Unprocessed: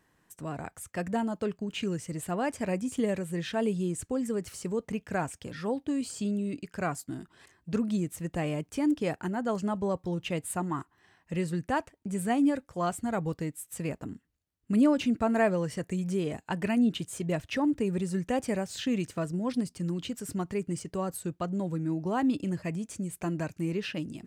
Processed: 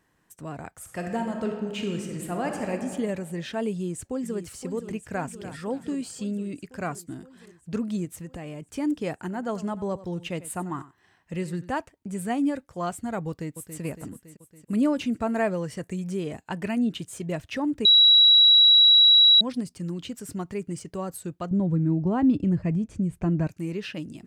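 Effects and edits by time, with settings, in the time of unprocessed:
0.74–2.72 reverb throw, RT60 1.8 s, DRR 2.5 dB
3.71–4.39 echo throw 0.52 s, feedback 75%, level -10 dB
5.11–5.65 echo throw 0.29 s, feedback 30%, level -13 dB
8.05–8.62 compressor, threshold -33 dBFS
9.13–11.75 echo 92 ms -16.5 dB
13.28–13.8 echo throw 0.28 s, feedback 65%, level -9 dB
17.85–19.41 bleep 3890 Hz -12 dBFS
21.51–23.47 RIAA curve playback

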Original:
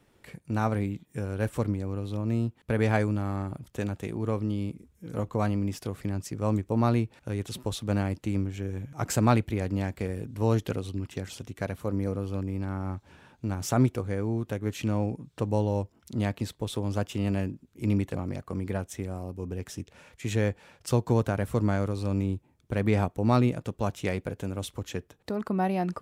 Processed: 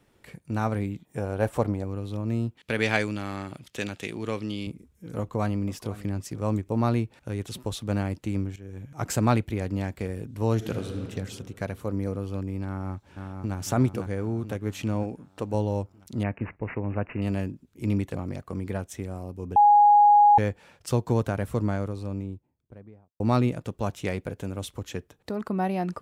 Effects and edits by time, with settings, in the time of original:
1.05–1.84 bell 730 Hz +11 dB 1.1 oct
2.57–4.67 weighting filter D
5.18–5.92 echo throw 0.49 s, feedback 15%, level -16.5 dB
8.56–8.98 fade in, from -14.5 dB
10.54–11.04 reverb throw, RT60 2.3 s, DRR 4 dB
12.66–13.56 echo throw 0.5 s, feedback 55%, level -5 dB
15.03–15.54 bell 120 Hz -7.5 dB 1.3 oct
16.23–17.22 careless resampling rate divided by 8×, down none, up filtered
19.56–20.38 bleep 827 Hz -12.5 dBFS
21.31–23.2 studio fade out

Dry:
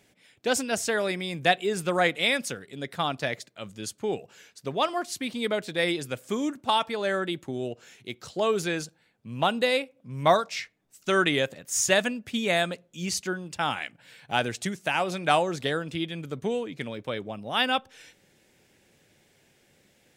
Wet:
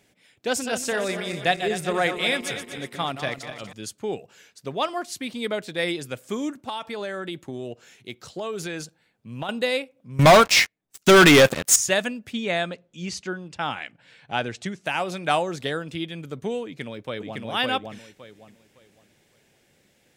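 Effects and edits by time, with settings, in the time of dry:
0.48–3.73 regenerating reverse delay 0.121 s, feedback 67%, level -8.5 dB
6.63–9.49 compressor, threshold -27 dBFS
10.19–11.76 sample leveller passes 5
12.33–14.86 air absorption 74 m
16.64–17.42 echo throw 0.56 s, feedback 25%, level -1.5 dB

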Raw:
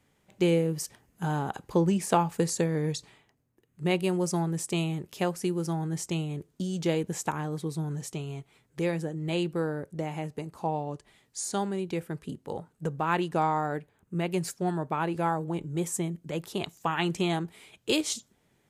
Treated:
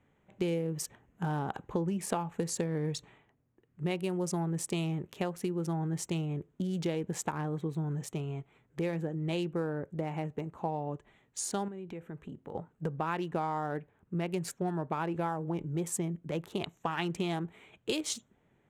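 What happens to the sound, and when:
11.68–12.55 compressor 5:1, threshold -39 dBFS
whole clip: Wiener smoothing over 9 samples; compressor 6:1, threshold -29 dBFS

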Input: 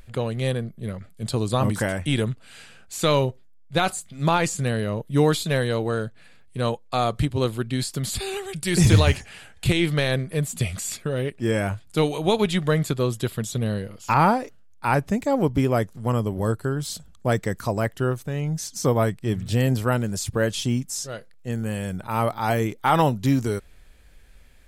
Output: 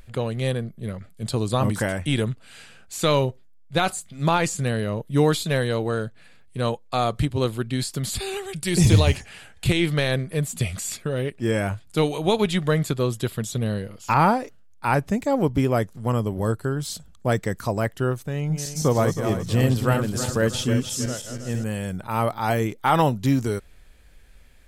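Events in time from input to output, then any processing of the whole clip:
8.69–9.15 bell 1500 Hz -6.5 dB 0.79 oct
18.34–21.64 regenerating reverse delay 0.16 s, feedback 62%, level -6.5 dB

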